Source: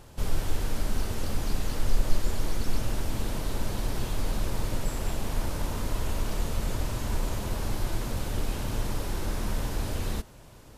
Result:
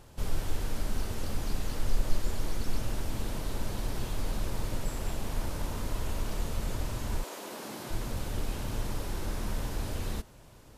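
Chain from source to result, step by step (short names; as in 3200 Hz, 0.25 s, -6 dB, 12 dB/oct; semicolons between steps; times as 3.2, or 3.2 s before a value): 7.22–7.89 HPF 370 Hz -> 150 Hz 24 dB/oct; gain -3.5 dB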